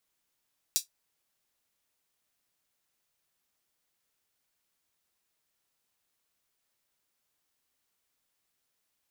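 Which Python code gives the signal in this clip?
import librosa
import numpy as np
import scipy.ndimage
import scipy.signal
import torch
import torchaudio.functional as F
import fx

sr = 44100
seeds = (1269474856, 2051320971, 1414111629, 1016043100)

y = fx.drum_hat(sr, length_s=0.24, from_hz=4800.0, decay_s=0.13)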